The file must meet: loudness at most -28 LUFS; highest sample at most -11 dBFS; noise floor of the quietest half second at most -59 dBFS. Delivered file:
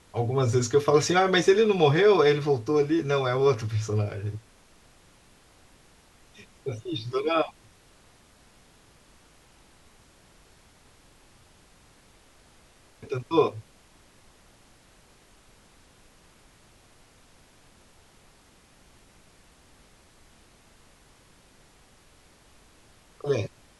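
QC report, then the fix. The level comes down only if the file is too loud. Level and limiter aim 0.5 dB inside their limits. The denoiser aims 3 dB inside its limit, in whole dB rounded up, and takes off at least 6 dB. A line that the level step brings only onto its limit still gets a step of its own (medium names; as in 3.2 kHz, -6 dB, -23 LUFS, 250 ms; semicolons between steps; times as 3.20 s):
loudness -24.5 LUFS: fail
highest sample -7.5 dBFS: fail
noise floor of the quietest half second -58 dBFS: fail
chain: trim -4 dB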